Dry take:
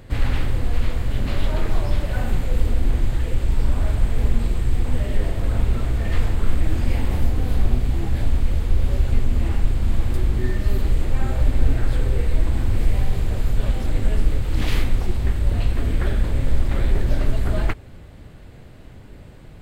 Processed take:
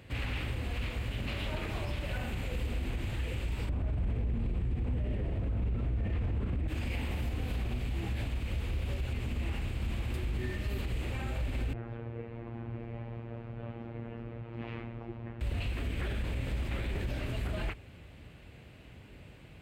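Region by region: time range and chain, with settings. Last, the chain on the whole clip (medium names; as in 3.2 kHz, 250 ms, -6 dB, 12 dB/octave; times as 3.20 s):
3.69–6.68 s: high-pass 180 Hz 6 dB/octave + tilt EQ -4.5 dB/octave
11.73–15.41 s: low-pass 1.1 kHz + peaking EQ 65 Hz -14.5 dB 1 oct + robot voice 116 Hz
whole clip: high-pass 45 Hz 24 dB/octave; peaking EQ 2.6 kHz +10 dB 0.72 oct; peak limiter -17.5 dBFS; trim -8.5 dB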